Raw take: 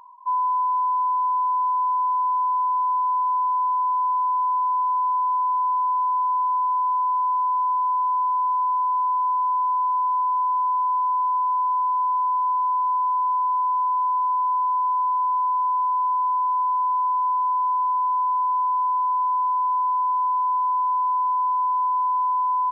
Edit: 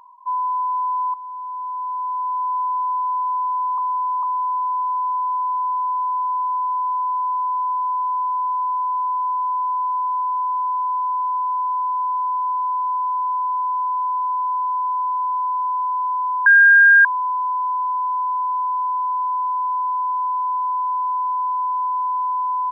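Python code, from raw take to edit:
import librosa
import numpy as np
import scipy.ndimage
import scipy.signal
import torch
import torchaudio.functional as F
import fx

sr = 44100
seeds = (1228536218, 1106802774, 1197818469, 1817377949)

y = fx.edit(x, sr, fx.fade_in_from(start_s=1.14, length_s=1.43, floor_db=-13.5),
    fx.reverse_span(start_s=3.78, length_s=0.45),
    fx.bleep(start_s=16.46, length_s=0.59, hz=1610.0, db=-7.0), tone=tone)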